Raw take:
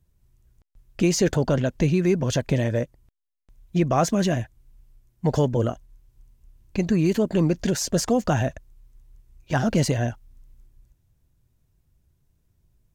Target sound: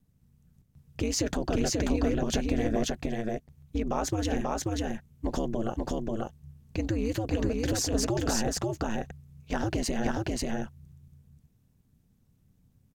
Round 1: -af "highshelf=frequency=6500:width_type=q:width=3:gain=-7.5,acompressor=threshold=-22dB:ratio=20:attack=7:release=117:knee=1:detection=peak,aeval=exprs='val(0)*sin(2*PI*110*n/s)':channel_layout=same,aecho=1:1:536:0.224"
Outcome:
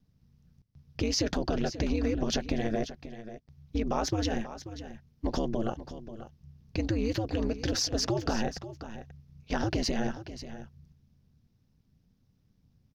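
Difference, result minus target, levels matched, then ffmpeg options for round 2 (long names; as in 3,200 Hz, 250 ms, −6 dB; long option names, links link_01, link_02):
echo-to-direct −11.5 dB; 8,000 Hz band −3.5 dB
-af "acompressor=threshold=-22dB:ratio=20:attack=7:release=117:knee=1:detection=peak,aeval=exprs='val(0)*sin(2*PI*110*n/s)':channel_layout=same,aecho=1:1:536:0.841"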